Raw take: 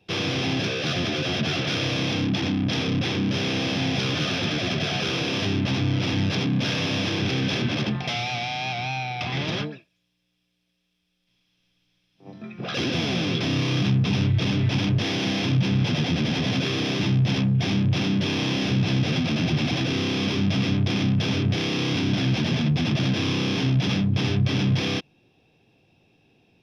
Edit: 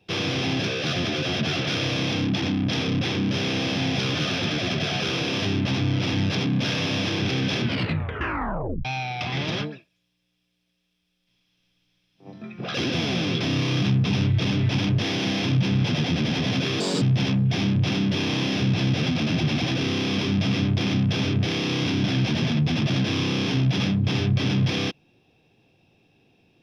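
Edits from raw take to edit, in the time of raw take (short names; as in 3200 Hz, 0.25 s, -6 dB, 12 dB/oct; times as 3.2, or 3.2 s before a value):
7.64 tape stop 1.21 s
16.8–17.11 speed 143%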